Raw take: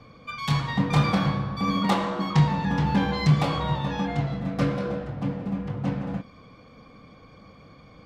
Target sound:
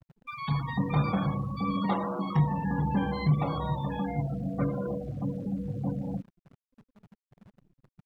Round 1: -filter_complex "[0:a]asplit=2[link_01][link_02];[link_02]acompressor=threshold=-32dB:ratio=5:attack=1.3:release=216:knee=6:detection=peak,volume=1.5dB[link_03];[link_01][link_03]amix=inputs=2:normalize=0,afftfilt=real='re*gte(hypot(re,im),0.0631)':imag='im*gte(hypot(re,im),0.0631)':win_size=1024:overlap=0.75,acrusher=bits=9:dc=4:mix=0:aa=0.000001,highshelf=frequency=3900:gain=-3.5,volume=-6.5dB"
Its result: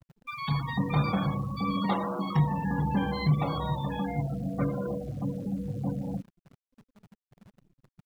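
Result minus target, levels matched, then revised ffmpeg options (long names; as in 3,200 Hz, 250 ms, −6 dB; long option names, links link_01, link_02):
8,000 Hz band +7.5 dB
-filter_complex "[0:a]asplit=2[link_01][link_02];[link_02]acompressor=threshold=-32dB:ratio=5:attack=1.3:release=216:knee=6:detection=peak,volume=1.5dB[link_03];[link_01][link_03]amix=inputs=2:normalize=0,afftfilt=real='re*gte(hypot(re,im),0.0631)':imag='im*gte(hypot(re,im),0.0631)':win_size=1024:overlap=0.75,acrusher=bits=9:dc=4:mix=0:aa=0.000001,highshelf=frequency=3900:gain=-13,volume=-6.5dB"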